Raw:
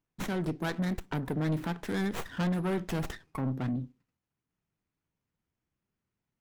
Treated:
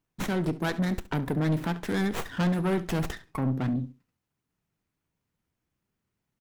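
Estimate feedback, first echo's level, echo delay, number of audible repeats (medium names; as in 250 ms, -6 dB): 16%, -17.5 dB, 69 ms, 2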